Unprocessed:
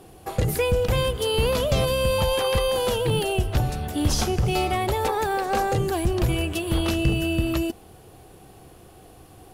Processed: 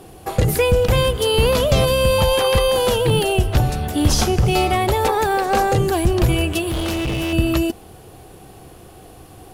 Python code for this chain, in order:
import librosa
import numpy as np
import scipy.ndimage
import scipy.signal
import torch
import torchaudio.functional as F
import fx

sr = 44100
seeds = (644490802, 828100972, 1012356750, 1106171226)

y = fx.overload_stage(x, sr, gain_db=26.0, at=(6.69, 7.33))
y = F.gain(torch.from_numpy(y), 6.0).numpy()